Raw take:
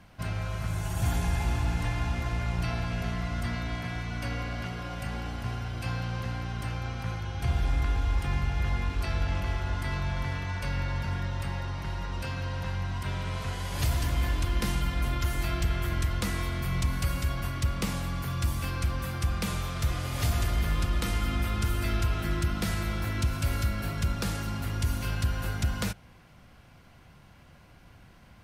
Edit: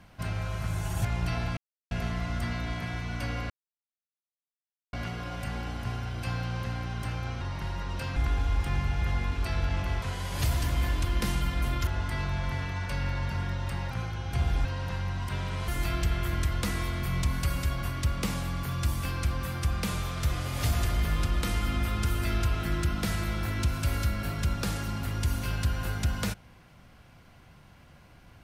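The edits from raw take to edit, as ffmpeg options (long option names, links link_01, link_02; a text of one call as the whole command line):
ffmpeg -i in.wav -filter_complex "[0:a]asplit=11[link_01][link_02][link_03][link_04][link_05][link_06][link_07][link_08][link_09][link_10][link_11];[link_01]atrim=end=1.052[link_12];[link_02]atrim=start=2.408:end=2.93,asetpts=PTS-STARTPTS,afade=type=out:start_time=0.518:duration=0.004:curve=hsin,apad=pad_dur=0.34[link_13];[link_03]atrim=start=2.93:end=4.52,asetpts=PTS-STARTPTS,afade=type=in:duration=0.004:curve=hsin,afade=type=out:start_time=1.586:duration=0.004:curve=hsin,apad=pad_dur=1.43[link_14];[link_04]atrim=start=4.52:end=7.002,asetpts=PTS-STARTPTS,afade=type=in:duration=0.004:curve=hsin[link_15];[link_05]atrim=start=11.638:end=12.392[link_16];[link_06]atrim=start=7.738:end=9.602[link_17];[link_07]atrim=start=13.418:end=15.272[link_18];[link_08]atrim=start=9.598:end=11.642[link_19];[link_09]atrim=start=6.998:end=7.742[link_20];[link_10]atrim=start=12.388:end=13.422[link_21];[link_11]atrim=start=15.268[link_22];[link_13][link_14][link_15]concat=n=3:v=0:a=1[link_23];[link_12][link_23]acrossfade=duration=0.004:curve1=hsin:curve2=hsin[link_24];[link_24][link_16]acrossfade=duration=0.004:curve1=hsin:curve2=hsin[link_25];[link_25][link_17]acrossfade=duration=0.004:curve1=hsin:curve2=hsin[link_26];[link_26][link_18]acrossfade=duration=0.004:curve1=hsin:curve2=hsin[link_27];[link_27][link_19]acrossfade=duration=0.004:curve1=hsin:curve2=hsin[link_28];[link_28][link_20]acrossfade=duration=0.004:curve1=hsin:curve2=hsin[link_29];[link_29][link_21]acrossfade=duration=0.004:curve1=hsin:curve2=hsin[link_30];[link_30][link_22]acrossfade=duration=0.004:curve1=hsin:curve2=hsin" out.wav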